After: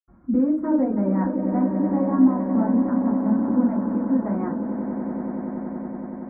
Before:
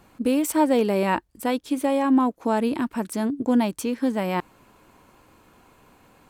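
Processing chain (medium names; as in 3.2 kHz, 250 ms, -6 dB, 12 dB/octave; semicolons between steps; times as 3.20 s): band-stop 450 Hz, Q 12; transient shaper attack +1 dB, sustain -11 dB; echo with a slow build-up 93 ms, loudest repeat 8, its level -11.5 dB; in parallel at +1 dB: peak limiter -17.5 dBFS, peak gain reduction 9.5 dB; on the sum: reverb removal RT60 0.78 s; reverberation RT60 0.35 s, pre-delay 77 ms; trim +6 dB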